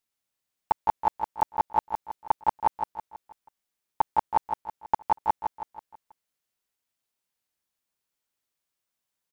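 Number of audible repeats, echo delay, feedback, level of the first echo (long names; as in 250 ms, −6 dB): 5, 162 ms, 46%, −6.5 dB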